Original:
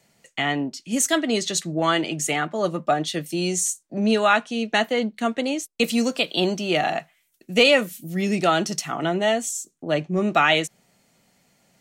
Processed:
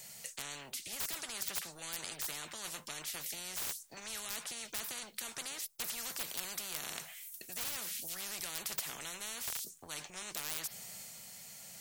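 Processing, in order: pre-emphasis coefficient 0.8; wavefolder -21 dBFS; bell 300 Hz -11.5 dB 0.7 oct; transient shaper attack -1 dB, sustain +3 dB; spectral compressor 10:1; gain +4 dB

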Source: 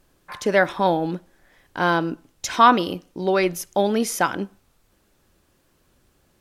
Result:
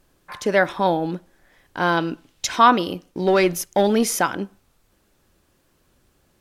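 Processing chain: 1.97–2.47 bell 3200 Hz +8 dB 1.6 oct; 3.1–4.21 sample leveller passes 1

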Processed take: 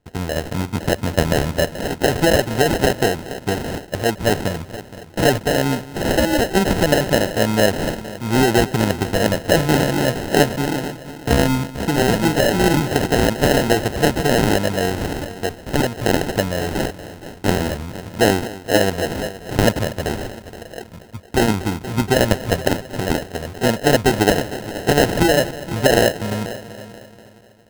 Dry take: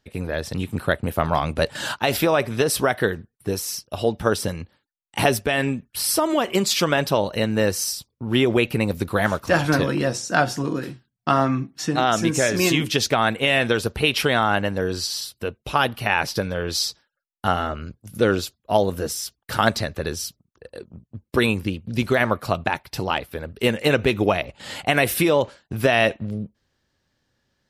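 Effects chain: multi-head echo 0.236 s, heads first and second, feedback 43%, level -17 dB; sample-and-hold 38×; gain +3.5 dB

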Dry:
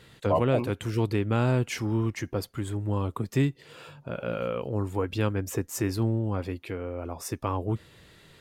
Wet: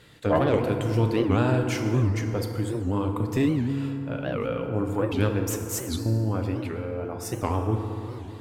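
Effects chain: 5.47–6.06 negative-ratio compressor -34 dBFS; added harmonics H 2 -6 dB, 4 -24 dB, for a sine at -11 dBFS; FDN reverb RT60 2.9 s, low-frequency decay 1.25×, high-frequency decay 0.45×, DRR 3.5 dB; record warp 78 rpm, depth 250 cents

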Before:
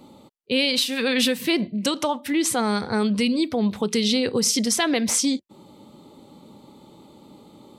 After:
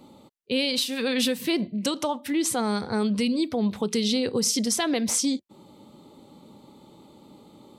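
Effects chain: dynamic EQ 2000 Hz, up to -4 dB, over -35 dBFS, Q 0.92; gain -2.5 dB

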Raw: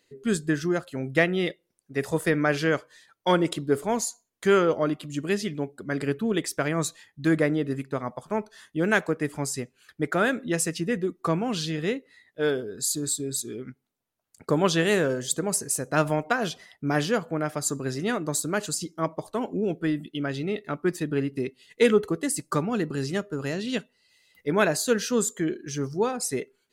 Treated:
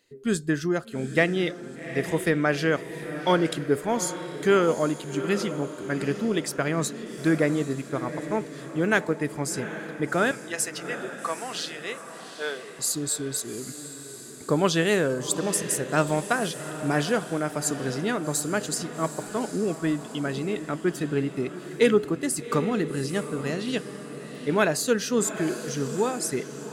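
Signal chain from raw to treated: 10.31–12.79 HPF 700 Hz 12 dB/oct; diffused feedback echo 0.793 s, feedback 50%, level -11 dB

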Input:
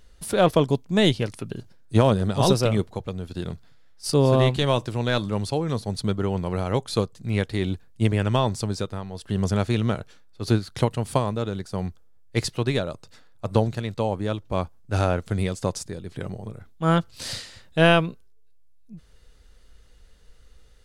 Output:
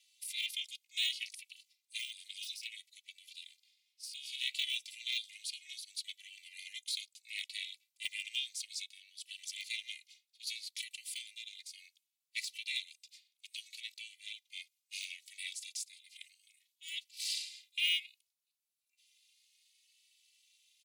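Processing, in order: de-esser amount 65%; Chebyshev high-pass 2200 Hz, order 8; 2.04–4.29 compressor 2.5:1, threshold -42 dBFS, peak gain reduction 8.5 dB; ring modulator 170 Hz; endless flanger 2.6 ms +0.64 Hz; gain +4 dB

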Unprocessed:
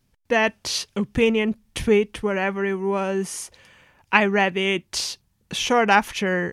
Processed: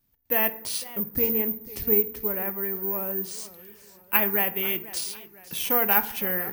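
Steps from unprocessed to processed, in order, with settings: 0.88–3.31 EQ curve 490 Hz 0 dB, 2100 Hz -5 dB, 3500 Hz -13 dB, 12000 Hz +5 dB; FDN reverb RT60 0.72 s, low-frequency decay 1.5×, high-frequency decay 0.5×, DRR 10.5 dB; careless resampling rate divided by 3×, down none, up zero stuff; warbling echo 0.498 s, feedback 45%, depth 183 cents, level -17.5 dB; gain -9 dB

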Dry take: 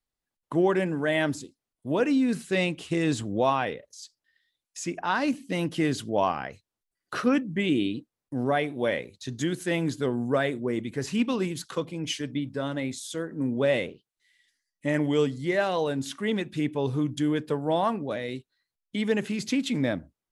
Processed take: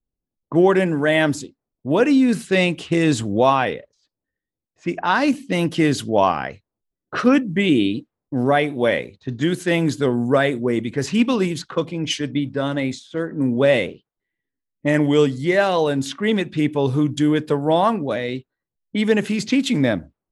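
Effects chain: low-pass opened by the level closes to 390 Hz, open at -25.5 dBFS; gain +8 dB

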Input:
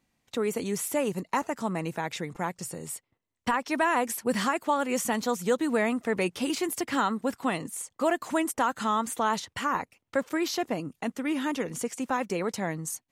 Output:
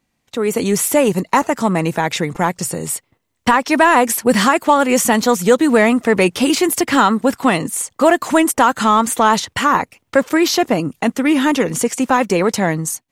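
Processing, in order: AGC gain up to 11 dB; in parallel at -11.5 dB: hard clip -16 dBFS, distortion -9 dB; on the sum: gain +2 dB

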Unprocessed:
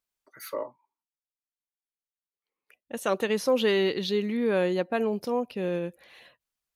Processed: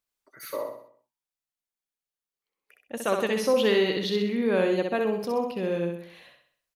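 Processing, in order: feedback echo 64 ms, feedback 46%, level -4.5 dB

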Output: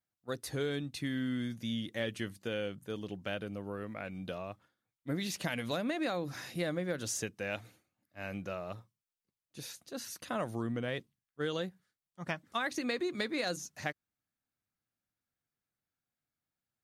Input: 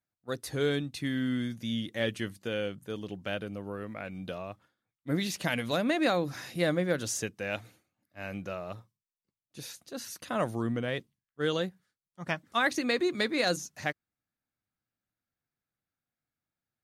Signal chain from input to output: compressor 4:1, threshold -29 dBFS, peak gain reduction 6.5 dB; gain -2 dB

